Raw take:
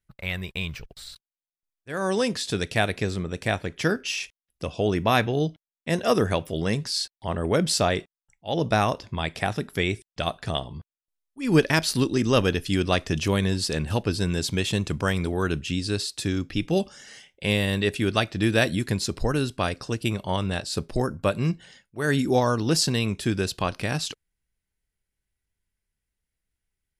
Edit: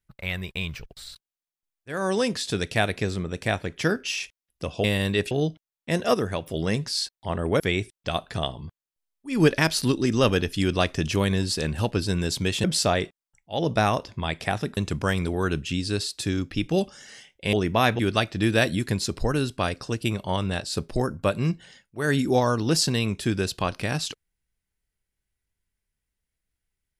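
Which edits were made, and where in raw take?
4.84–5.3 swap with 17.52–17.99
6.13–6.45 gain -4.5 dB
7.59–9.72 move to 14.76

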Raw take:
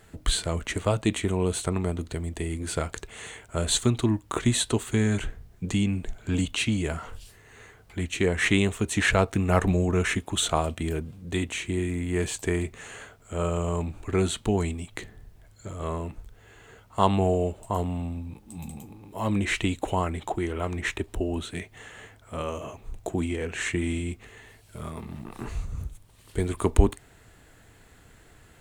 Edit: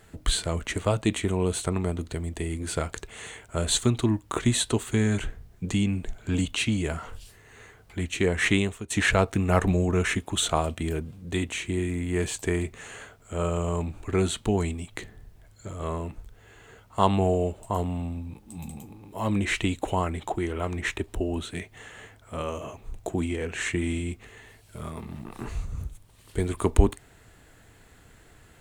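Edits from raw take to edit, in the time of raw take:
8.52–8.9 fade out, to -17 dB

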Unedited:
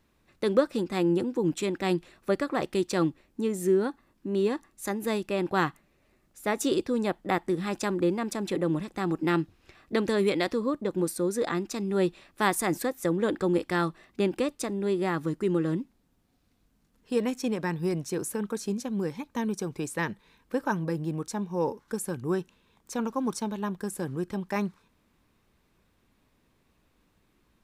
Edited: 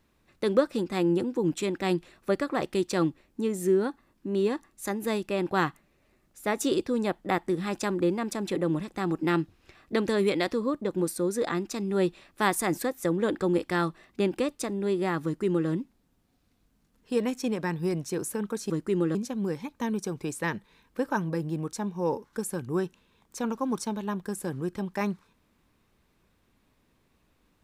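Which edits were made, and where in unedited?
15.24–15.69 copy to 18.7

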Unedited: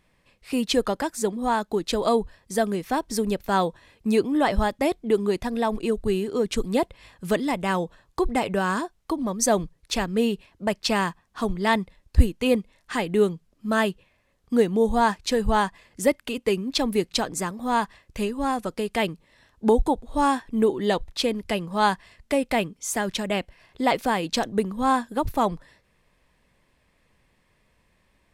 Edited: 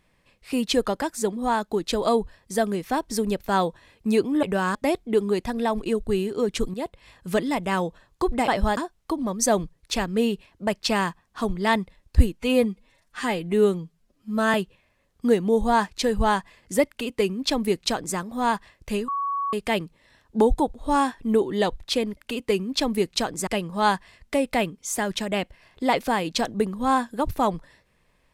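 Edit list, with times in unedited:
4.43–4.72 swap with 8.45–8.77
6.71–7.32 fade in equal-power, from -12 dB
12.38–13.82 stretch 1.5×
16.15–17.45 copy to 21.45
18.36–18.81 bleep 1120 Hz -23.5 dBFS

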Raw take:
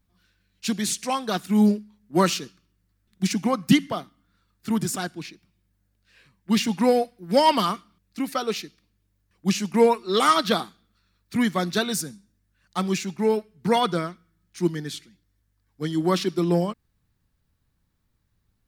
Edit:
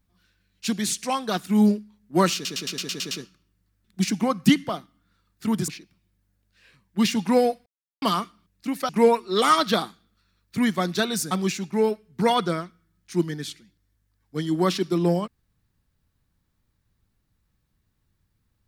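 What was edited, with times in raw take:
2.34 stutter 0.11 s, 8 plays
4.91–5.2 cut
7.18–7.54 mute
8.41–9.67 cut
12.09–12.77 cut

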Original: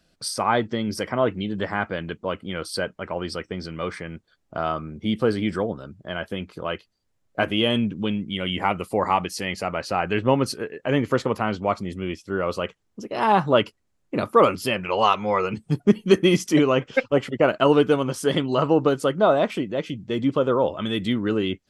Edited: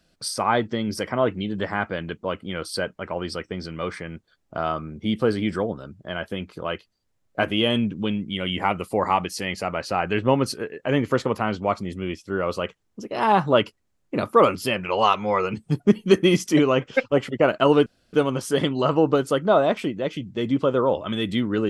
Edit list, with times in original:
17.86 insert room tone 0.27 s

